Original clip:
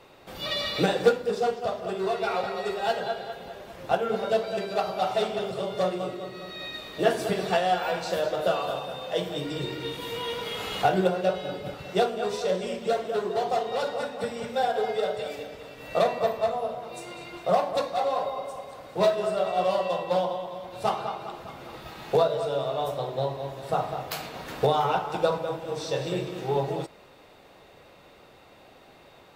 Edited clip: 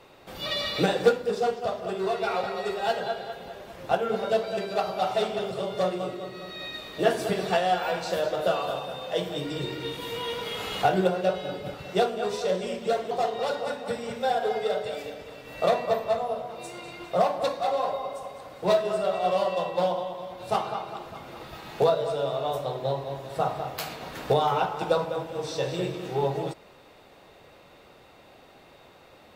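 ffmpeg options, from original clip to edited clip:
-filter_complex "[0:a]asplit=2[s0][s1];[s0]atrim=end=13.112[s2];[s1]atrim=start=13.438[s3];[s2][s3]acrossfade=d=0.004:c1=hsin:c2=hsin"

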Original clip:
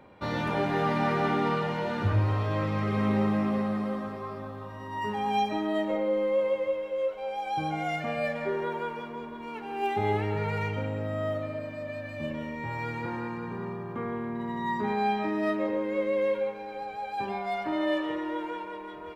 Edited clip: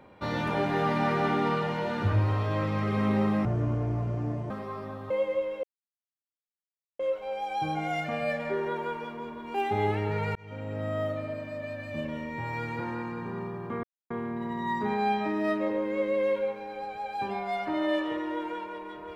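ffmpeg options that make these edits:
-filter_complex "[0:a]asplit=8[s0][s1][s2][s3][s4][s5][s6][s7];[s0]atrim=end=3.454[s8];[s1]atrim=start=3.45:end=4.04,asetpts=PTS-STARTPTS,asetrate=24696,aresample=44100,atrim=end_sample=46462,asetpts=PTS-STARTPTS[s9];[s2]atrim=start=4.036:end=4.642[s10];[s3]atrim=start=6.418:end=6.95,asetpts=PTS-STARTPTS,afade=t=out:st=0.528:d=0.004:c=hsin,apad=pad_dur=1.36[s11];[s4]atrim=start=6.95:end=9.502,asetpts=PTS-STARTPTS,afade=t=in:d=0.004:c=hsin[s12];[s5]atrim=start=9.798:end=10.61,asetpts=PTS-STARTPTS,afade=t=out:st=0.808:d=0.004:c=hsin[s13];[s6]atrim=start=10.61:end=14.09,asetpts=PTS-STARTPTS,afade=t=in:d=0.49,afade=t=out:st=3.476:d=0.004:c=hsin,apad=pad_dur=0.27[s14];[s7]atrim=start=14.09,asetpts=PTS-STARTPTS,afade=t=in:d=0.004:c=hsin[s15];[s8][s9]acrossfade=d=0.004:c1=hsin:c2=hsin[s16];[s16][s10]acrossfade=d=0.004:c1=hsin:c2=hsin[s17];[s11][s12]concat=n=2:v=0:a=1[s18];[s17][s18]acrossfade=d=0.004:c1=hsin:c2=hsin[s19];[s13][s14][s15]concat=n=3:v=0:a=1[s20];[s19][s20]acrossfade=d=0.004:c1=hsin:c2=hsin"

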